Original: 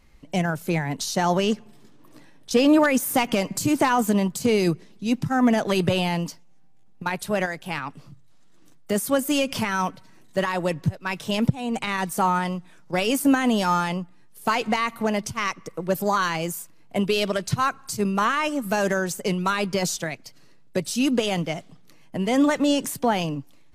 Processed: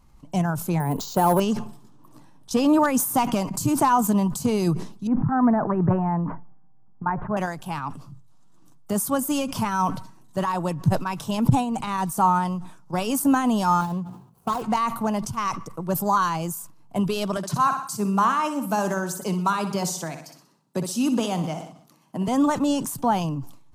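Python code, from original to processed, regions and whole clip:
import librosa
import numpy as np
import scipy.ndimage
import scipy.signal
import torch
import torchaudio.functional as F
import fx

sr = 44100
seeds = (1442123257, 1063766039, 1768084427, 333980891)

y = fx.chain(x, sr, fx.peak_eq(hz=460.0, db=11.5, octaves=0.82),
    fx.clip_hard(threshold_db=-11.0),
    fx.resample_bad(factor=4, down='filtered', up='hold'), at=(0.8, 1.4))
y = fx.chain(y, sr, fx.steep_lowpass(hz=1900.0, slope=48),
    fx.notch(hz=540.0, q=14.0),
    fx.sustainer(db_per_s=60.0), at=(5.07, 7.37))
y = fx.chain(y, sr, fx.median_filter(points=25),
    fx.high_shelf(hz=12000.0, db=4.0),
    fx.notch_comb(f0_hz=300.0), at=(13.81, 14.62))
y = fx.chain(y, sr, fx.highpass(hz=160.0, slope=24),
    fx.echo_feedback(ms=62, feedback_pct=47, wet_db=-11.5), at=(17.37, 22.28))
y = fx.graphic_eq_10(y, sr, hz=(125, 500, 1000, 2000, 4000), db=(4, -7, 8, -12, -4))
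y = fx.sustainer(y, sr, db_per_s=93.0)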